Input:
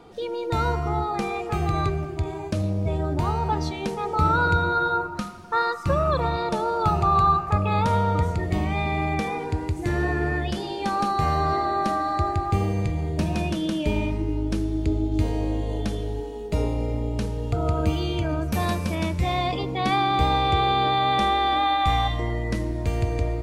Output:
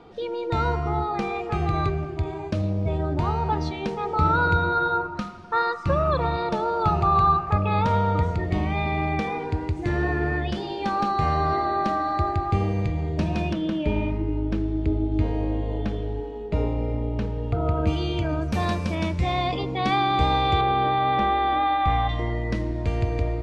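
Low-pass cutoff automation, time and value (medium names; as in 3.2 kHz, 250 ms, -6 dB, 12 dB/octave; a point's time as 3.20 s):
4.5 kHz
from 13.53 s 2.7 kHz
from 17.87 s 5.8 kHz
from 20.61 s 2.3 kHz
from 22.09 s 4.5 kHz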